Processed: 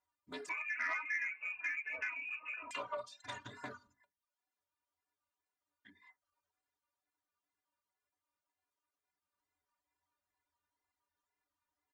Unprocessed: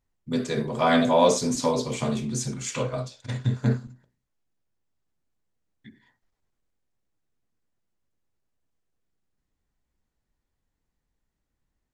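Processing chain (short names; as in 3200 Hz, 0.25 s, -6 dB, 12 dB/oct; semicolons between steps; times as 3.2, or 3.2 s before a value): comb 3.1 ms, depth 69%; wow and flutter 99 cents; metallic resonator 87 Hz, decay 0.25 s, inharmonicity 0.03; reverb removal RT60 0.52 s; compressor 6:1, threshold -40 dBFS, peak gain reduction 16.5 dB; 0.49–2.71 inverted band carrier 2700 Hz; HPF 56 Hz; bell 1100 Hz +12.5 dB 1.5 oct; soft clip -26.5 dBFS, distortion -22 dB; low shelf 470 Hz -10.5 dB; notches 50/100/150/200/250 Hz; Doppler distortion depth 0.11 ms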